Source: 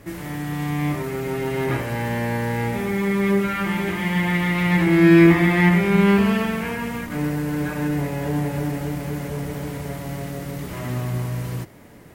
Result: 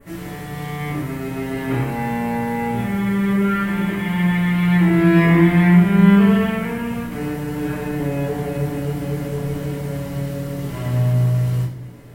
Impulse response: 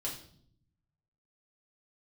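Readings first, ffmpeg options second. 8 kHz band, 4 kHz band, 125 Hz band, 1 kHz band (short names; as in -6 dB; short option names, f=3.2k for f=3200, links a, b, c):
n/a, -1.0 dB, +4.5 dB, +1.5 dB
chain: -filter_complex "[0:a]adynamicequalizer=threshold=0.00562:dfrequency=4900:dqfactor=1.2:tfrequency=4900:tqfactor=1.2:attack=5:release=100:ratio=0.375:range=3.5:mode=cutabove:tftype=bell[a];[1:a]atrim=start_sample=2205[b];[a][b]afir=irnorm=-1:irlink=0,volume=-1dB"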